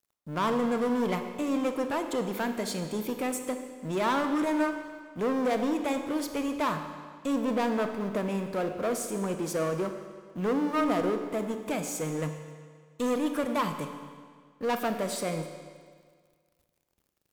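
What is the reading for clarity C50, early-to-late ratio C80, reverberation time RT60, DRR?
7.5 dB, 8.5 dB, 1.8 s, 6.5 dB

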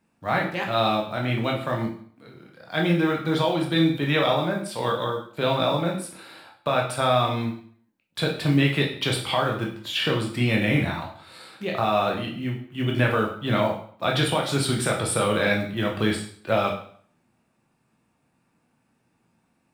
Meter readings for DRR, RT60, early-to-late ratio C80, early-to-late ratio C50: -0.5 dB, 0.55 s, 11.0 dB, 6.5 dB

